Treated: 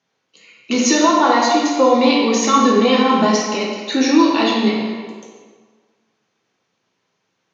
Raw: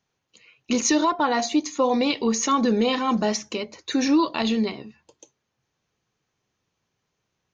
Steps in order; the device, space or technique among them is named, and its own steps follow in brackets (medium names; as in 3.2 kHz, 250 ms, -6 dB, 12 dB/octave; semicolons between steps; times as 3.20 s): supermarket ceiling speaker (band-pass 220–6600 Hz; reverberation RT60 1.6 s, pre-delay 6 ms, DRR -3.5 dB); trim +4 dB